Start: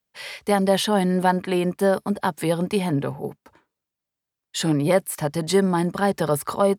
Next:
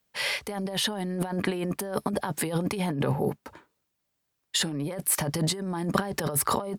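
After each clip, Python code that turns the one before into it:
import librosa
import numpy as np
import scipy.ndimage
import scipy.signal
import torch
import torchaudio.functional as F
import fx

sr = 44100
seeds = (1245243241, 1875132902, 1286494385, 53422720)

y = fx.over_compress(x, sr, threshold_db=-29.0, ratio=-1.0)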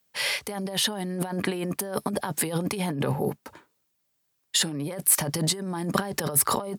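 y = scipy.signal.sosfilt(scipy.signal.butter(2, 79.0, 'highpass', fs=sr, output='sos'), x)
y = fx.high_shelf(y, sr, hz=4600.0, db=6.0)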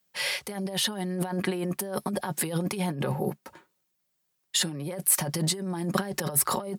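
y = x + 0.44 * np.pad(x, (int(5.5 * sr / 1000.0), 0))[:len(x)]
y = y * 10.0 ** (-3.0 / 20.0)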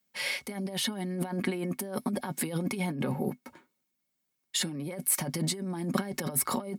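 y = fx.small_body(x, sr, hz=(250.0, 2200.0), ring_ms=90, db=14)
y = y * 10.0 ** (-4.5 / 20.0)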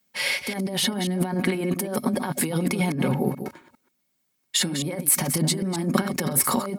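y = fx.reverse_delay(x, sr, ms=134, wet_db=-8.5)
y = y * 10.0 ** (7.0 / 20.0)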